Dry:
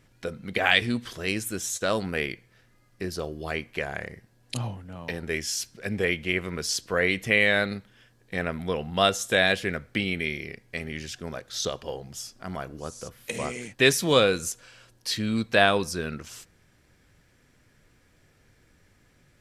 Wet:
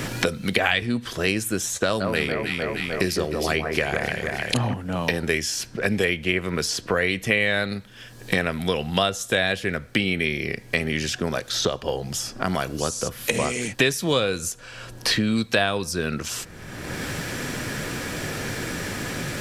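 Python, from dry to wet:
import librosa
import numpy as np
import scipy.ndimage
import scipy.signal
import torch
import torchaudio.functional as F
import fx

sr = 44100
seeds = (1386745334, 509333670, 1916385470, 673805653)

y = fx.echo_alternate(x, sr, ms=153, hz=1800.0, feedback_pct=66, wet_db=-4.0, at=(1.85, 4.74))
y = fx.notch(y, sr, hz=2100.0, q=23.0)
y = fx.band_squash(y, sr, depth_pct=100)
y = y * librosa.db_to_amplitude(4.0)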